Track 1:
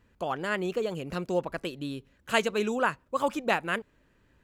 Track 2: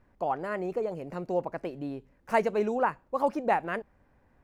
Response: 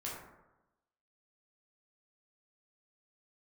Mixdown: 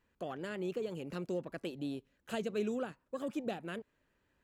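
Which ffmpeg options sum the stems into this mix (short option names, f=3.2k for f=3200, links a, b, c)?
-filter_complex "[0:a]lowshelf=f=240:g=-8.5,acompressor=threshold=-29dB:ratio=6,volume=-8.5dB[a];[1:a]afwtdn=0.0178,acrossover=split=330|3000[b][c][d];[c]acompressor=threshold=-50dB:ratio=2[e];[b][e][d]amix=inputs=3:normalize=0,volume=-1,volume=-4.5dB[f];[a][f]amix=inputs=2:normalize=0"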